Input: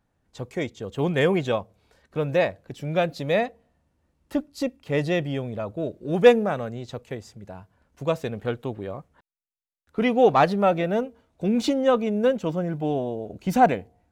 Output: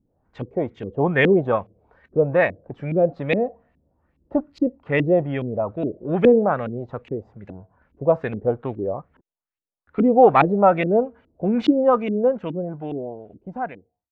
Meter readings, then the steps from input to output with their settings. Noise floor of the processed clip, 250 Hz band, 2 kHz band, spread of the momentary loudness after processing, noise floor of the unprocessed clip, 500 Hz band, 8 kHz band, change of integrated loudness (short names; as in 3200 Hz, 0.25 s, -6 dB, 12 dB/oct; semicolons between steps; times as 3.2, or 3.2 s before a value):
under -85 dBFS, +3.5 dB, +3.0 dB, 16 LU, -74 dBFS, +3.0 dB, n/a, +3.0 dB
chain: ending faded out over 2.86 s; LFO low-pass saw up 2.4 Hz 270–2700 Hz; gain +2 dB